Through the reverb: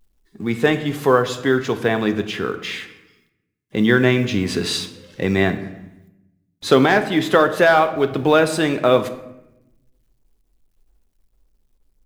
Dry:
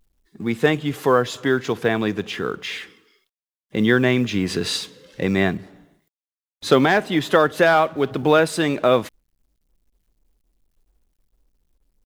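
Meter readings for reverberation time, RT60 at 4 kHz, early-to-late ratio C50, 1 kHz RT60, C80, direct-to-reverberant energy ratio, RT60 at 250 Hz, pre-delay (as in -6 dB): 0.90 s, 0.60 s, 12.5 dB, 0.80 s, 14.5 dB, 8.5 dB, 1.3 s, 3 ms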